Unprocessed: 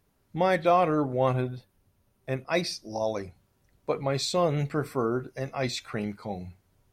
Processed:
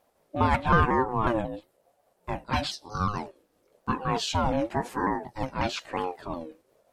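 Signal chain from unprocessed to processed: repeated pitch sweeps -4 st, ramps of 0.181 s; ring modulator with a swept carrier 520 Hz, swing 25%, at 1 Hz; gain +4.5 dB

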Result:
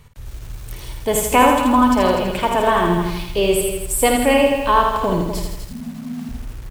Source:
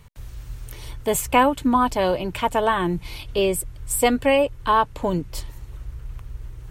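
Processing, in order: loudspeakers at several distances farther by 18 m -8 dB, 85 m -11 dB; 5.68–6.29 frequency shift -280 Hz; lo-fi delay 81 ms, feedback 55%, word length 7-bit, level -4 dB; gain +2 dB

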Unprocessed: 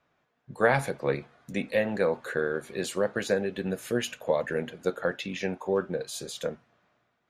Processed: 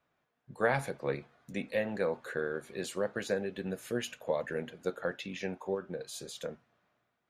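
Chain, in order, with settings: 5.74–6.49 compressor, threshold -27 dBFS, peak gain reduction 6 dB; gain -6 dB

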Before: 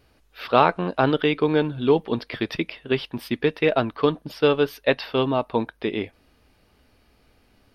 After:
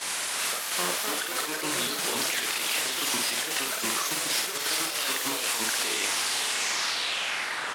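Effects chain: opening faded in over 1.39 s; added noise pink -38 dBFS; tilt shelf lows -5 dB, about 690 Hz; low-pass sweep 10000 Hz -> 1400 Hz, 6.43–7.71; weighting filter A; negative-ratio compressor -33 dBFS, ratio -1; gate -34 dBFS, range -11 dB; on a send: thinning echo 0.543 s, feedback 69%, level -10.5 dB; on the sum: echoes that change speed 0.379 s, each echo +3 st, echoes 2; doubler 50 ms -4.5 dB; gain -1 dB

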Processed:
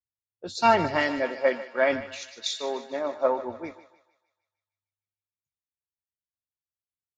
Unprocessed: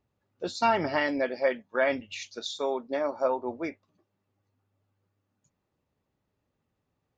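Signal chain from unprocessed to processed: thinning echo 0.152 s, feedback 78%, high-pass 440 Hz, level -10 dB; three-band expander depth 100%

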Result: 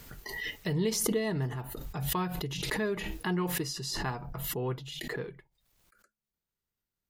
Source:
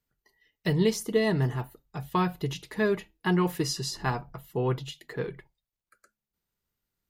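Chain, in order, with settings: backwards sustainer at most 27 dB/s; gain -6.5 dB

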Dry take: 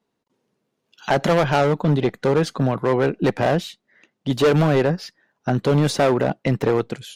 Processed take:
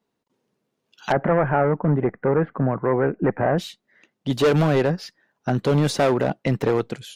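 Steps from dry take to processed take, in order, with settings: 1.12–3.58 steep low-pass 2000 Hz 36 dB/oct; gain -1.5 dB

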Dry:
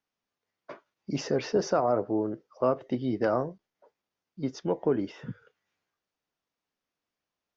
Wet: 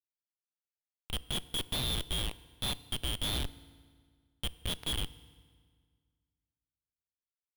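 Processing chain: four-band scrambler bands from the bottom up 2413; Bessel high-pass 1100 Hz, order 8; Schmitt trigger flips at -25 dBFS; FDN reverb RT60 1.8 s, low-frequency decay 1.2×, high-frequency decay 0.85×, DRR 16.5 dB

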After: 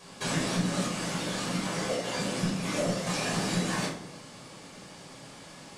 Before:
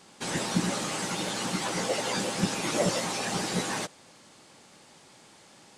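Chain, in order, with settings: 0.86–3.07 gate -27 dBFS, range -7 dB; compressor 6:1, threshold -34 dBFS, peak gain reduction 13 dB; shoebox room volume 960 m³, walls furnished, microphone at 5.6 m

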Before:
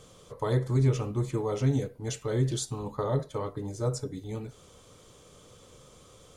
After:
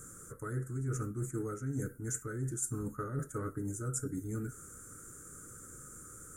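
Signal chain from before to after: EQ curve 190 Hz 0 dB, 320 Hz +3 dB, 680 Hz -17 dB, 1000 Hz -18 dB, 1400 Hz +13 dB, 3000 Hz -28 dB, 4200 Hz -24 dB, 7300 Hz +11 dB, 11000 Hz +13 dB; reverse; compressor 12:1, threshold -34 dBFS, peak gain reduction 15 dB; reverse; gain +1 dB

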